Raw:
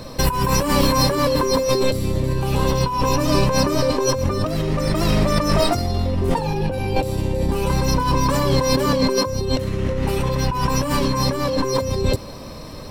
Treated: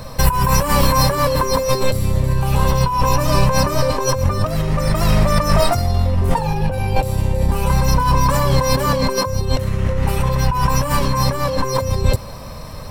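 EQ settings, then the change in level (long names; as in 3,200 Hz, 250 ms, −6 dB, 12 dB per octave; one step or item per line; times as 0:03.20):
parametric band 320 Hz −13.5 dB 1.2 octaves
parametric band 3,900 Hz −7 dB 1.9 octaves
+6.5 dB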